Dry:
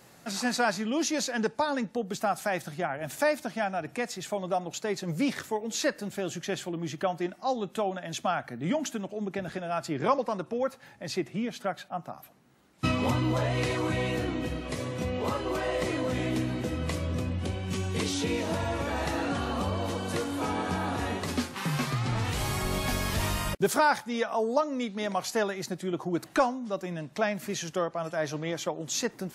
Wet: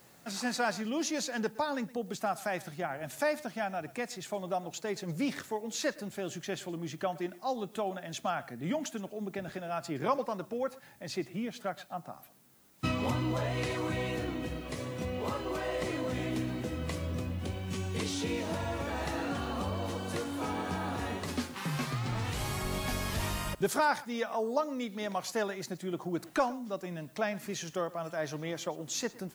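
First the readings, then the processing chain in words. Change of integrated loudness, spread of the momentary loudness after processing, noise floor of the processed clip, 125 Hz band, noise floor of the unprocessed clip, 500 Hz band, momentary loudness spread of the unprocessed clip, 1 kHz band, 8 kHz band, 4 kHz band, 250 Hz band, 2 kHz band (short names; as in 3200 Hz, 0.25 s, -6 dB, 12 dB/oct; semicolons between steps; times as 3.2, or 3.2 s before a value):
-4.5 dB, 7 LU, -55 dBFS, -4.5 dB, -55 dBFS, -4.5 dB, 7 LU, -4.5 dB, -4.5 dB, -4.5 dB, -4.5 dB, -4.5 dB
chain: added noise blue -61 dBFS; echo 0.117 s -20 dB; gain -4.5 dB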